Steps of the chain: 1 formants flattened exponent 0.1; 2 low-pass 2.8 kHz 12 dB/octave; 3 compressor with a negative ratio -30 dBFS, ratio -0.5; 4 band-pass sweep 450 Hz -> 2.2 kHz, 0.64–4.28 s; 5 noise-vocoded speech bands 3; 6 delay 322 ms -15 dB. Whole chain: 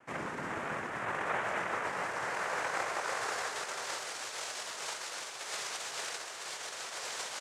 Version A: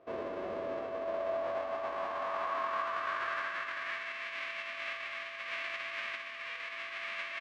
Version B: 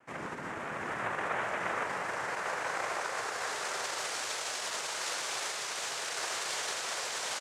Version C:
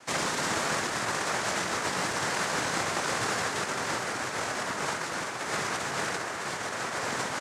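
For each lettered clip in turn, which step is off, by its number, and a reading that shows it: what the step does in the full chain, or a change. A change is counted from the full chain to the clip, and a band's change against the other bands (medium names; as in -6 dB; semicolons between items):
5, 500 Hz band +5.0 dB; 3, momentary loudness spread change -4 LU; 4, loudness change +6.5 LU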